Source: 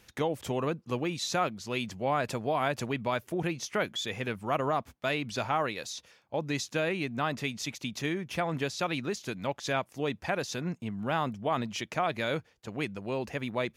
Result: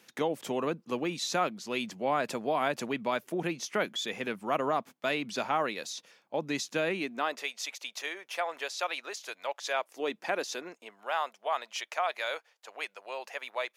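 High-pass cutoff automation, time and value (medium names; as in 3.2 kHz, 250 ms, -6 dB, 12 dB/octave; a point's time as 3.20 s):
high-pass 24 dB/octave
6.91 s 180 Hz
7.52 s 530 Hz
9.68 s 530 Hz
10.24 s 240 Hz
11.13 s 590 Hz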